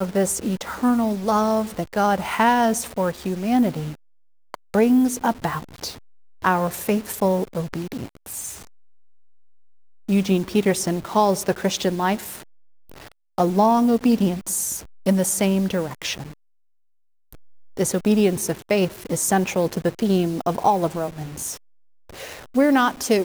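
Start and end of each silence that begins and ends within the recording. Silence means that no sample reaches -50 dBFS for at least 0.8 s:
16.33–17.33 s

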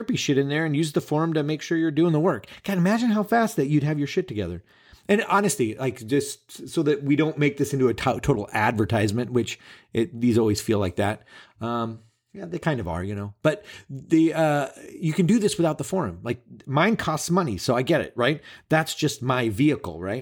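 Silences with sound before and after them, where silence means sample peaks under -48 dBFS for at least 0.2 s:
12.04–12.34 s

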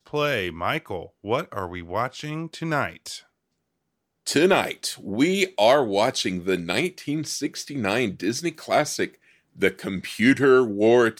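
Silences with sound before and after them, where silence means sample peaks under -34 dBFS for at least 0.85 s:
3.19–4.27 s

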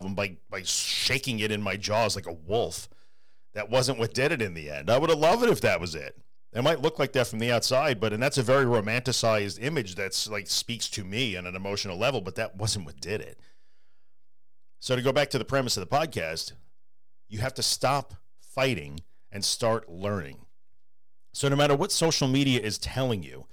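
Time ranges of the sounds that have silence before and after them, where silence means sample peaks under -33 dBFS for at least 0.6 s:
3.56–13.29 s
14.83–16.49 s
17.33–20.30 s

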